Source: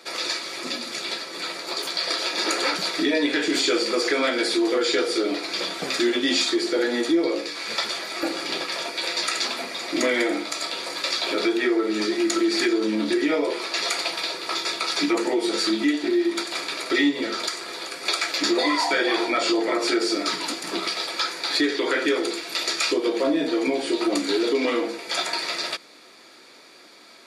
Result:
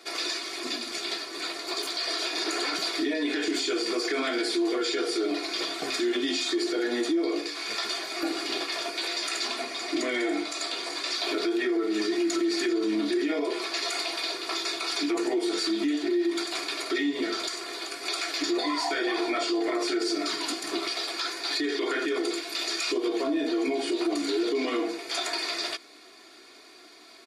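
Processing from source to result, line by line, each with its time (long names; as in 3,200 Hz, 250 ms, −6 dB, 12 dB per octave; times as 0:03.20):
0:09.48–0:11.14: low-pass filter 11,000 Hz 24 dB per octave
whole clip: comb filter 2.8 ms, depth 72%; brickwall limiter −15.5 dBFS; level −4 dB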